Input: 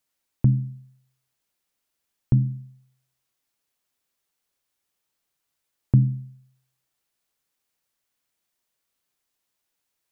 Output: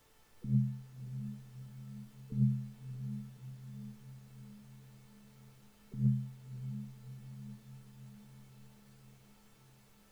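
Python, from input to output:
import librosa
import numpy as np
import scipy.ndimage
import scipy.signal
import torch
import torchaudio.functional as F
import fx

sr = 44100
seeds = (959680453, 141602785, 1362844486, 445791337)

p1 = fx.spec_gate(x, sr, threshold_db=-20, keep='strong')
p2 = fx.peak_eq(p1, sr, hz=350.0, db=13.0, octaves=1.9)
p3 = fx.over_compress(p2, sr, threshold_db=-18.0, ratio=-0.5)
p4 = fx.fixed_phaser(p3, sr, hz=470.0, stages=8)
p5 = fx.dmg_noise_colour(p4, sr, seeds[0], colour='pink', level_db=-61.0)
p6 = fx.comb_fb(p5, sr, f0_hz=440.0, decay_s=0.33, harmonics='all', damping=0.0, mix_pct=80)
p7 = p6 + fx.echo_diffused(p6, sr, ms=605, feedback_pct=59, wet_db=-10.0, dry=0)
y = F.gain(torch.from_numpy(p7), 6.5).numpy()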